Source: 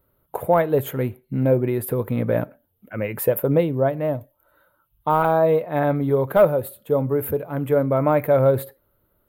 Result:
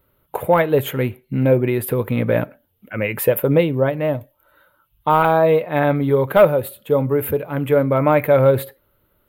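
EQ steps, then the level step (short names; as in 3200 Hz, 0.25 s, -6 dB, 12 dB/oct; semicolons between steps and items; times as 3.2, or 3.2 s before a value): bell 2700 Hz +8 dB 1.3 oct; notch 680 Hz, Q 16; +3.0 dB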